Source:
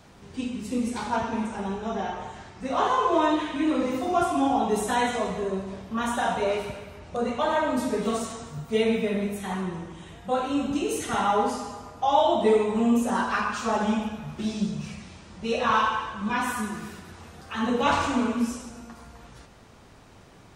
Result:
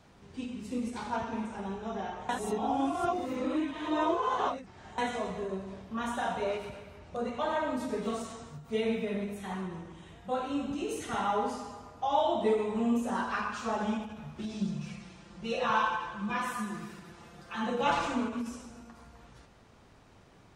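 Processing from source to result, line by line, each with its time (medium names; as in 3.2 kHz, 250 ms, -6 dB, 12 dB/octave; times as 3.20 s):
2.29–4.98 s: reverse
14.61–18.14 s: comb 5.8 ms, depth 66%
whole clip: treble shelf 7.7 kHz -6 dB; endings held to a fixed fall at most 120 dB/s; trim -6.5 dB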